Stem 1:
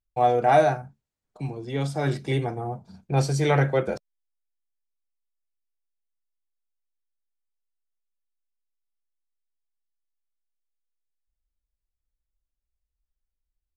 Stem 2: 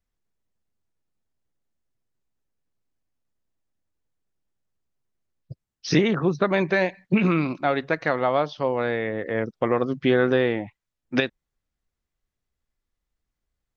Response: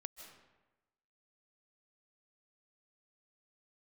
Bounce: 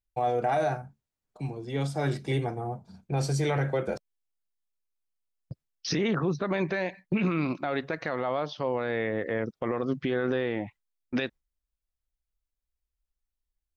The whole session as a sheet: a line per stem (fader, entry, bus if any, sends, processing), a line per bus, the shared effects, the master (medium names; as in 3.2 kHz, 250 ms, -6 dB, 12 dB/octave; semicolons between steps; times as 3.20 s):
-2.5 dB, 0.00 s, no send, none
-1.0 dB, 0.00 s, no send, gate with hold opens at -35 dBFS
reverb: none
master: peak limiter -18.5 dBFS, peak gain reduction 11.5 dB